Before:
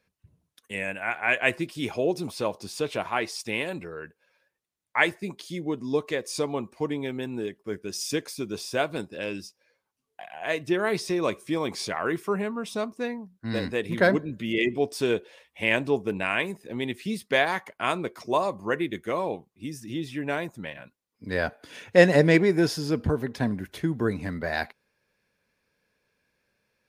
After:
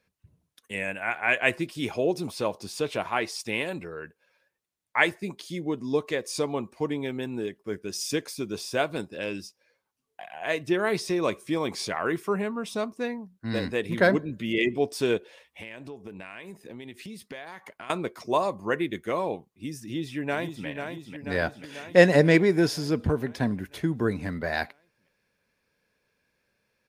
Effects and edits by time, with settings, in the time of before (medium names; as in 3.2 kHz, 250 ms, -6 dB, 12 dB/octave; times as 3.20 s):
15.17–17.90 s: compression, threshold -38 dBFS
19.82–20.67 s: echo throw 490 ms, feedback 65%, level -6.5 dB